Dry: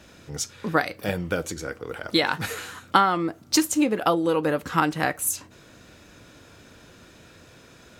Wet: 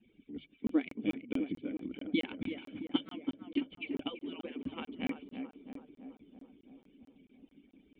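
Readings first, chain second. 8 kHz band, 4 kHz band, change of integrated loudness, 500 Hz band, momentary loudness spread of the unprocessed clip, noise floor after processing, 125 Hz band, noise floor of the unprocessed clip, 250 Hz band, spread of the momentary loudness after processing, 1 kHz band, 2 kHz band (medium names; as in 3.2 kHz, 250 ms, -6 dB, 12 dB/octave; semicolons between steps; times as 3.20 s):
under -40 dB, -14.5 dB, -13.5 dB, -17.0 dB, 12 LU, -68 dBFS, -17.0 dB, -51 dBFS, -8.0 dB, 18 LU, -26.5 dB, -17.5 dB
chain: harmonic-percussive separation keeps percussive; hum notches 50/100/150 Hz; in parallel at -6 dB: crossover distortion -46 dBFS; on the sum: cascade formant filter i; tape echo 332 ms, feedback 74%, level -6 dB, low-pass 1.3 kHz; crackling interface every 0.22 s, samples 1024, zero, from 0.67 s; trim +2 dB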